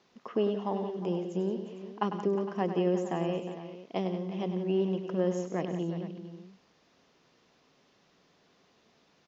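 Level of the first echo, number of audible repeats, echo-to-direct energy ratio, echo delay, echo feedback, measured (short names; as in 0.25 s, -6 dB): -9.5 dB, 4, -6.0 dB, 0.1 s, no steady repeat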